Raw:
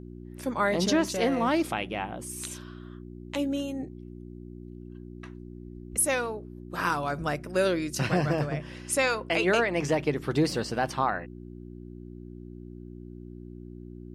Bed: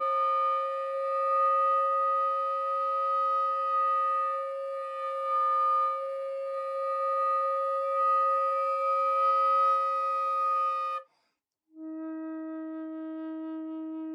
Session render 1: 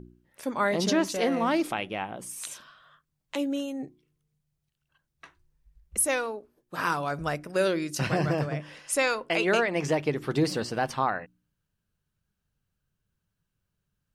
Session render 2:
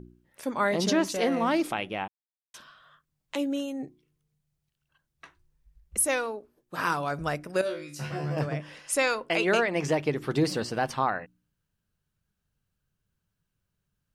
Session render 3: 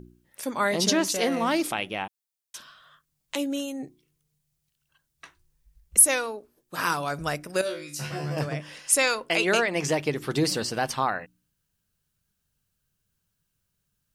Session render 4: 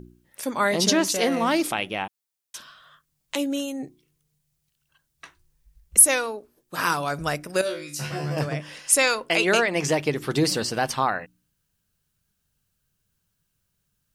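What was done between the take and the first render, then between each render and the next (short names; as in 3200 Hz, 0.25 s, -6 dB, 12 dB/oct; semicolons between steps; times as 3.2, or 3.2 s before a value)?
de-hum 60 Hz, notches 6
2.08–2.54 mute; 7.61–8.37 resonator 73 Hz, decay 0.3 s, mix 100%
high shelf 3500 Hz +10.5 dB
gain +2.5 dB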